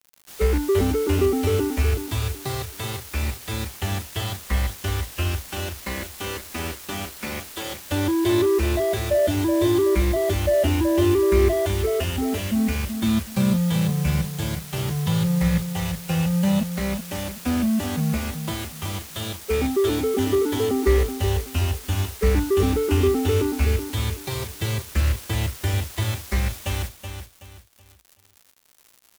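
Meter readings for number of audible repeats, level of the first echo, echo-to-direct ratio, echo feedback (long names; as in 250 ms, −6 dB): 3, −8.0 dB, −7.5 dB, 32%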